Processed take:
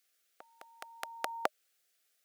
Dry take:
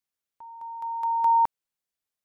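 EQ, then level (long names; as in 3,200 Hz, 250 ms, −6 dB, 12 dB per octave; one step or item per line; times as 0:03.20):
high-pass filter 460 Hz
Butterworth band-reject 950 Hz, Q 2
notch filter 610 Hz, Q 12
+13.5 dB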